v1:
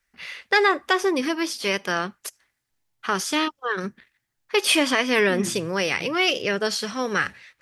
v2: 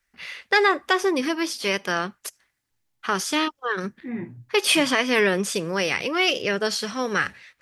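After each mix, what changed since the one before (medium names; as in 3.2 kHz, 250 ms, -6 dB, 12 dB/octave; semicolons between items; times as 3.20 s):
second voice: entry -1.25 s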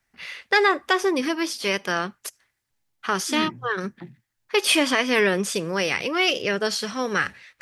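second voice: entry -0.75 s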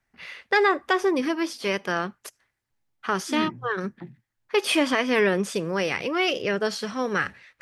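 master: add treble shelf 2.5 kHz -8 dB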